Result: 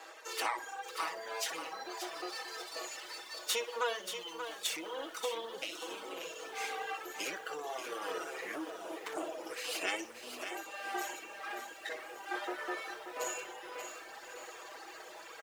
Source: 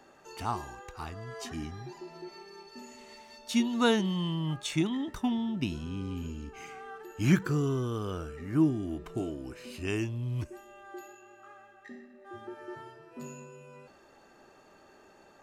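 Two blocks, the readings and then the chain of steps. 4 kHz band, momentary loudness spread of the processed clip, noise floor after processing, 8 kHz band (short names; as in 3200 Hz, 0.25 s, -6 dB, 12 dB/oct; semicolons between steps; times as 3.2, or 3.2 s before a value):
+1.0 dB, 9 LU, -51 dBFS, +4.5 dB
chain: minimum comb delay 6.2 ms; bell 690 Hz -3 dB 0.9 oct; feedback echo 61 ms, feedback 34%, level -8 dB; compressor 5:1, threshold -39 dBFS, peak gain reduction 17 dB; HPF 450 Hz 24 dB/oct; diffused feedback echo 1.201 s, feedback 59%, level -13 dB; vocal rider within 4 dB 2 s; reverb removal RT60 1.6 s; lo-fi delay 0.583 s, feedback 35%, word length 11-bit, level -8 dB; gain +10 dB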